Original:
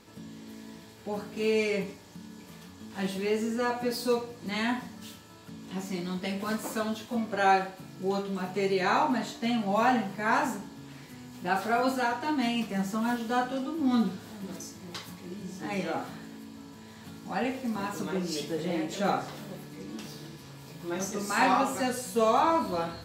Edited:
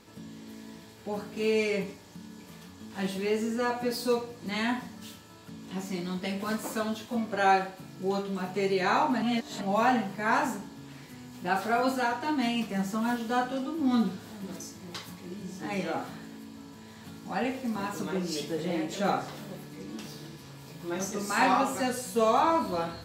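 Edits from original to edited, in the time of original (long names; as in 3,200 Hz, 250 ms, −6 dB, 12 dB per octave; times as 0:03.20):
0:09.22–0:09.61: reverse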